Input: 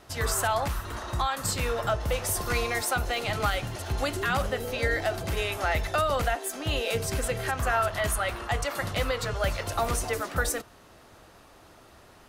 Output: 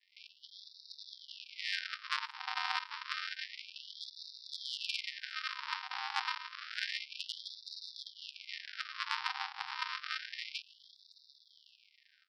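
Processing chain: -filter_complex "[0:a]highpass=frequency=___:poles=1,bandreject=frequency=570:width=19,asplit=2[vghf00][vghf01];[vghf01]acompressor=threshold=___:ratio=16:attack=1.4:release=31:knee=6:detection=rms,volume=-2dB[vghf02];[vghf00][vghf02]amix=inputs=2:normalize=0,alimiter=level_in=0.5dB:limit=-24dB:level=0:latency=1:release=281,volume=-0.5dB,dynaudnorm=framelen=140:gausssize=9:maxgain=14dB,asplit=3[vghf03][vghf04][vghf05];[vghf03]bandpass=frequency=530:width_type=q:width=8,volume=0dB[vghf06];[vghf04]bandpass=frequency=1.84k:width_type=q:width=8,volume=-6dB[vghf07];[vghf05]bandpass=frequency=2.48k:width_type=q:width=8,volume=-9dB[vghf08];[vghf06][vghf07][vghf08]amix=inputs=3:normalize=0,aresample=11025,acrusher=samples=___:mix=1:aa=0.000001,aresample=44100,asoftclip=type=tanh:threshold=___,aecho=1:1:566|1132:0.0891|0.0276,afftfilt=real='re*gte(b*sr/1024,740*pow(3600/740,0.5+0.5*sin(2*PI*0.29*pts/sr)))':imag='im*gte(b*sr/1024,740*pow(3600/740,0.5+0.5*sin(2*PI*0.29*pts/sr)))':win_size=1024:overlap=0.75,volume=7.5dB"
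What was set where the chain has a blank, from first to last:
230, -37dB, 39, -17.5dB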